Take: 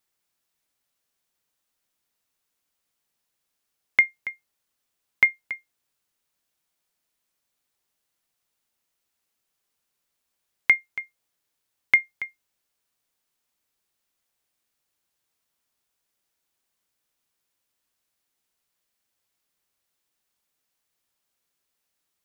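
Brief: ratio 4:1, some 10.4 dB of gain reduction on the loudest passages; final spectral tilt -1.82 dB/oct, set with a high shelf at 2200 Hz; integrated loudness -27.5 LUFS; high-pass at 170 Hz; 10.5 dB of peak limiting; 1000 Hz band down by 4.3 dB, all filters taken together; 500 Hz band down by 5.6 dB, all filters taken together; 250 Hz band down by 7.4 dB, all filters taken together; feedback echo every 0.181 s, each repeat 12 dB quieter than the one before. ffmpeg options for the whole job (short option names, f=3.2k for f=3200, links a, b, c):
-af "highpass=170,equalizer=f=250:t=o:g=-7,equalizer=f=500:t=o:g=-4,equalizer=f=1k:t=o:g=-3.5,highshelf=f=2.2k:g=-3.5,acompressor=threshold=-28dB:ratio=4,alimiter=limit=-21dB:level=0:latency=1,aecho=1:1:181|362|543:0.251|0.0628|0.0157,volume=13dB"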